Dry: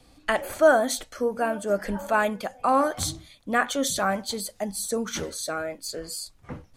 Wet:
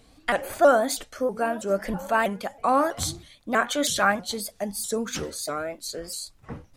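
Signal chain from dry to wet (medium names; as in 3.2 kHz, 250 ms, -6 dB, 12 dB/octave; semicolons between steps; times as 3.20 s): 3.69–4.12 s: dynamic bell 2 kHz, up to +8 dB, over -39 dBFS, Q 0.74; vibrato with a chosen wave saw up 3.1 Hz, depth 160 cents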